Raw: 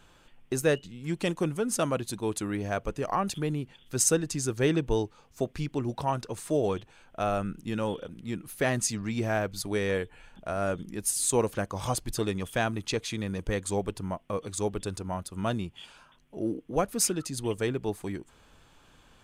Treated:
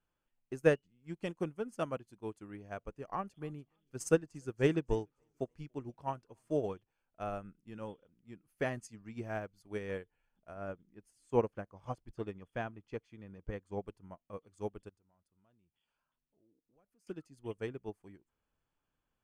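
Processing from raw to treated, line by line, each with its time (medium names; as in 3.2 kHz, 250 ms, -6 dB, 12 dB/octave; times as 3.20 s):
2.88–6.63 s: modulated delay 290 ms, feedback 61%, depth 104 cents, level -24 dB
10.54–13.84 s: low-pass 2.9 kHz 6 dB/octave
14.89–17.07 s: compression 2:1, threshold -56 dBFS
whole clip: treble shelf 3.8 kHz -7.5 dB; band-stop 3.8 kHz, Q 5.1; upward expansion 2.5:1, over -38 dBFS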